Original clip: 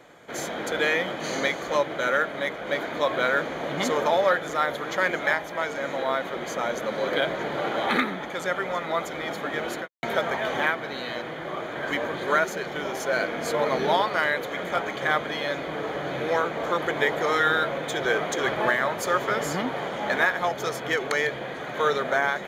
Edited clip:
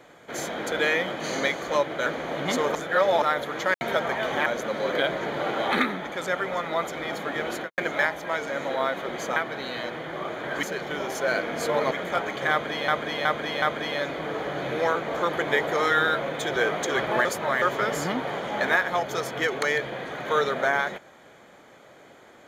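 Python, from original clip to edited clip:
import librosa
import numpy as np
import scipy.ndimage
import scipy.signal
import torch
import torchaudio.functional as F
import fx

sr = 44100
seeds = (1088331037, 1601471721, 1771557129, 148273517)

y = fx.edit(x, sr, fx.cut(start_s=2.06, length_s=1.32),
    fx.reverse_span(start_s=4.07, length_s=0.47),
    fx.swap(start_s=5.06, length_s=1.58, other_s=9.96, other_length_s=0.72),
    fx.cut(start_s=11.95, length_s=0.53),
    fx.cut(start_s=13.76, length_s=0.75),
    fx.repeat(start_s=15.11, length_s=0.37, count=4),
    fx.reverse_span(start_s=18.74, length_s=0.37), tone=tone)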